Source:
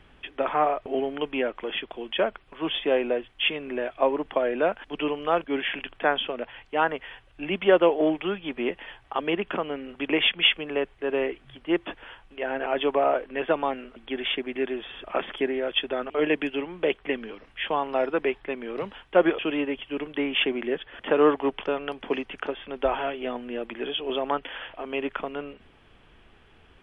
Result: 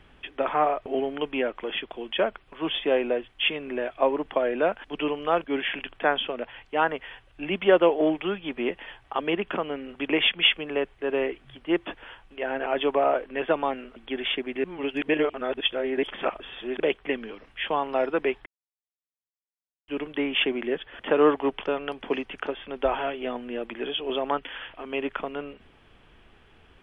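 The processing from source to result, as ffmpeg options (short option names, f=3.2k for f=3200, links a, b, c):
-filter_complex "[0:a]asettb=1/sr,asplit=3[a][b][c];[a]atrim=end=24.394[d];[b]atrim=start=24.39:end=24.92,asetpts=PTS-STARTPTS,afade=t=in:d=0.004:c=qsin,afade=t=out:st=0.526:d=0.004:c=qsin,equalizer=f=630:w=1.4:g=-6[e];[c]atrim=start=24.916[f];[d][e]acrossfade=d=0.004:c1=hsin:c2=qsin[g];[g][f]acrossfade=d=0.004:c1=qsin:c2=hsin,asplit=5[h][i][j][k][l];[h]atrim=end=14.642[m];[i]atrim=start=14.638:end=16.802,asetpts=PTS-STARTPTS,areverse[n];[j]atrim=start=16.798:end=18.46,asetpts=PTS-STARTPTS,afade=t=out:st=1.658:d=0.004:c=hsin[o];[k]atrim=start=18.46:end=19.88,asetpts=PTS-STARTPTS,volume=0[p];[l]atrim=start=19.88,asetpts=PTS-STARTPTS,afade=t=in:d=0.004:c=hsin[q];[m][n]acrossfade=d=0.004:c1=hsin:c2=hsin[r];[o][p][q]concat=n=3:v=0:a=1[s];[r][s]acrossfade=d=0.004:c1=hsin:c2=hsin"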